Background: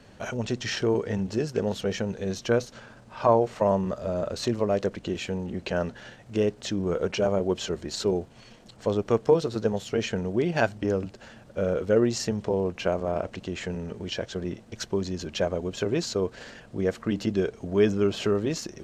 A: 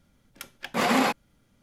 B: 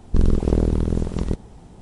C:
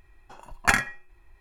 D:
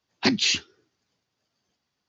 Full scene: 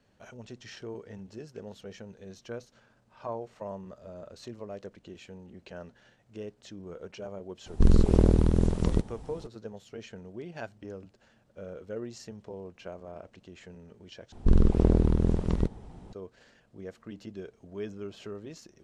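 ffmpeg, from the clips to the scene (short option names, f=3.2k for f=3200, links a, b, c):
-filter_complex "[2:a]asplit=2[a][b];[0:a]volume=-16dB[c];[b]lowpass=f=3.6k:p=1[d];[c]asplit=2[e][f];[e]atrim=end=14.324[g];[d]atrim=end=1.81,asetpts=PTS-STARTPTS,volume=-3dB[h];[f]atrim=start=16.126[i];[a]atrim=end=1.81,asetpts=PTS-STARTPTS,volume=-2dB,afade=t=in:d=0.004:c=hsin,afade=t=out:st=1.806:d=0.004:c=hsin,adelay=7660[j];[g][h]acrossfade=d=0.004:c1=hsin:c2=hsin[k];[k][i]acrossfade=d=0.004:c1=hsin:c2=hsin[l];[l][j]amix=inputs=2:normalize=0"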